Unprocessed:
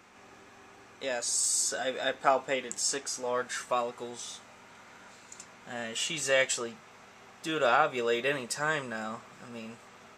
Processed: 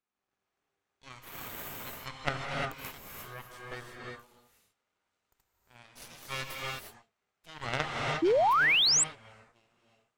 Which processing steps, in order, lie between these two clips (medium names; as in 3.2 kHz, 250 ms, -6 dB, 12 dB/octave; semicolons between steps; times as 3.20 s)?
Chebyshev shaper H 3 -7 dB, 5 -23 dB, 6 -23 dB, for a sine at -9.5 dBFS; gated-style reverb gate 380 ms rising, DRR -1.5 dB; painted sound rise, 8.22–9.04 s, 310–8400 Hz -24 dBFS